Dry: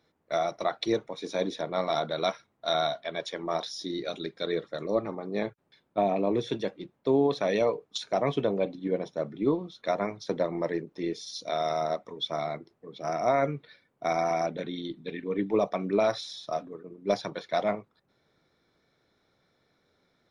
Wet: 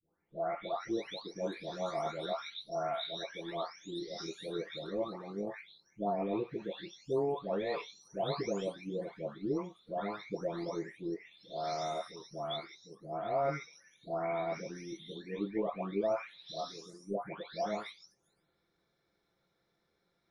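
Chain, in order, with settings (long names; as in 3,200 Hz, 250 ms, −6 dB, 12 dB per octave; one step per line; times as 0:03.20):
every frequency bin delayed by itself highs late, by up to 694 ms
level −6 dB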